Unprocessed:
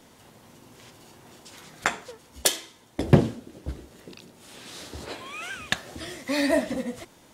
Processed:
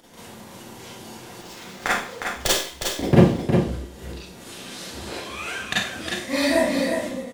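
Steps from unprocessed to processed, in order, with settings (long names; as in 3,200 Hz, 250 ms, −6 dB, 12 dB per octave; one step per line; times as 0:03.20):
noise gate with hold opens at −42 dBFS
upward compression, threshold −38 dBFS
on a send: single-tap delay 359 ms −6 dB
on the sum: four-comb reverb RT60 0.44 s, combs from 32 ms, DRR −7.5 dB
0:01.41–0:03.43: windowed peak hold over 3 samples
level −3.5 dB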